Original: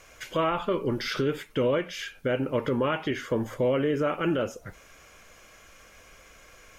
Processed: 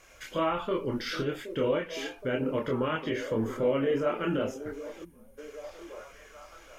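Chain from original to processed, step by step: repeats whose band climbs or falls 771 ms, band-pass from 350 Hz, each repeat 0.7 oct, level -8 dB; chorus voices 4, 0.35 Hz, delay 26 ms, depth 2.8 ms; time-frequency box 5.05–5.38 s, 240–8400 Hz -22 dB

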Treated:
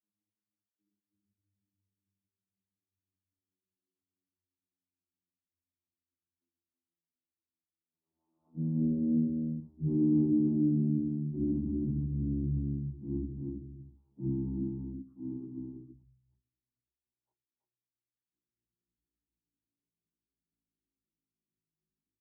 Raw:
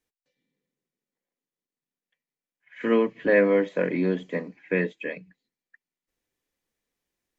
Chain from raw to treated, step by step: vocoder on a note that slides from G3, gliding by -12 st; dynamic bell 230 Hz, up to +6 dB, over -41 dBFS, Q 2.9; wide varispeed 0.532×; in parallel at -9.5 dB: saturation -26.5 dBFS, distortion -7 dB; on the sum: four-pole ladder low-pass 380 Hz, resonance 60%; plain phase-vocoder stretch 1.6×; flange 0.67 Hz, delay 3 ms, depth 2.6 ms, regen -51%; on a send: delay 326 ms -4 dB; on the sum: trim +4.5 dB

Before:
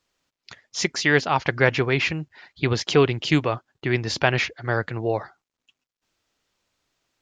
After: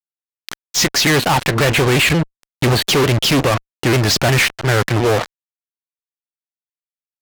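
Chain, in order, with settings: 1.17–2.84 s: brick-wall FIR low-pass 4.8 kHz; fuzz box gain 37 dB, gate -35 dBFS; vibrato with a chosen wave saw down 5.6 Hz, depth 160 cents; trim +1.5 dB

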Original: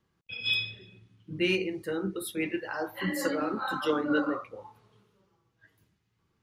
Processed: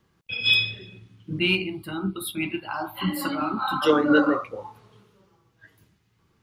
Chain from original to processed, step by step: 1.39–3.82 s: static phaser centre 1.8 kHz, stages 6; trim +8.5 dB

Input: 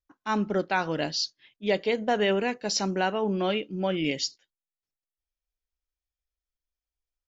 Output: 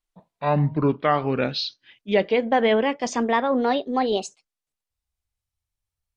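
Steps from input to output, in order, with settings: gliding tape speed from 58% -> 178%; low-pass that closes with the level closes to 2.6 kHz, closed at -23.5 dBFS; trim +5.5 dB

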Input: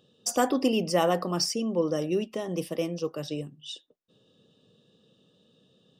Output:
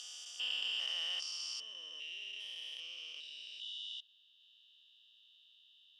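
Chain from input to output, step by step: spectrogram pixelated in time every 400 ms; ladder band-pass 3.3 kHz, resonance 75%; trim +10 dB

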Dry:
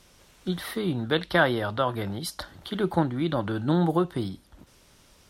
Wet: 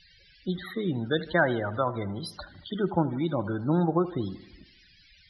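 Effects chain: band noise 1.5–5.5 kHz -52 dBFS; loudest bins only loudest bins 32; feedback echo behind a low-pass 77 ms, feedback 56%, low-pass 2.6 kHz, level -16 dB; trim -1.5 dB

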